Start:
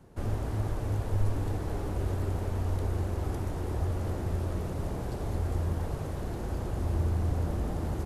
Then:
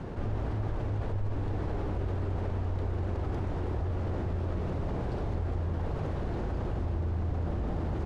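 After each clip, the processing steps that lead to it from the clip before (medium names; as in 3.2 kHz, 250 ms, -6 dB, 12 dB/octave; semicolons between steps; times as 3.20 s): low-pass 3.6 kHz 12 dB/octave; level flattener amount 70%; trim -7 dB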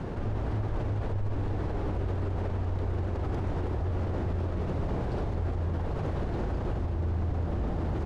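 peak limiter -26 dBFS, peak gain reduction 5 dB; trim +3.5 dB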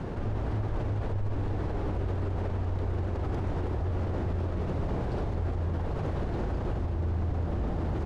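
no audible change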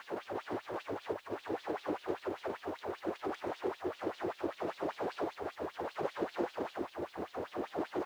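LFO high-pass sine 5.1 Hz 320–3800 Hz; bit crusher 11-bit; trim -1.5 dB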